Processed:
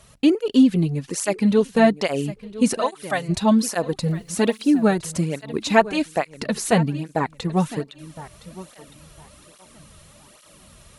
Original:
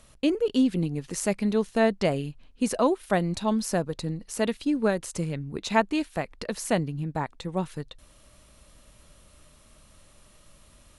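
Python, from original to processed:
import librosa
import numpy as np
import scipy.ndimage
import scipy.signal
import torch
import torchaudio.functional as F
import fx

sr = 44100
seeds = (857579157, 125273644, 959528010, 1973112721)

p1 = fx.highpass(x, sr, hz=1300.0, slope=6, at=(2.76, 3.28), fade=0.02)
p2 = fx.rider(p1, sr, range_db=10, speed_s=2.0)
p3 = p1 + F.gain(torch.from_numpy(p2), 0.0).numpy()
p4 = fx.quant_dither(p3, sr, seeds[0], bits=10, dither='none', at=(4.09, 4.91))
p5 = p4 + fx.echo_feedback(p4, sr, ms=1011, feedback_pct=27, wet_db=-16.5, dry=0)
p6 = fx.flanger_cancel(p5, sr, hz=1.2, depth_ms=4.1)
y = F.gain(torch.from_numpy(p6), 2.5).numpy()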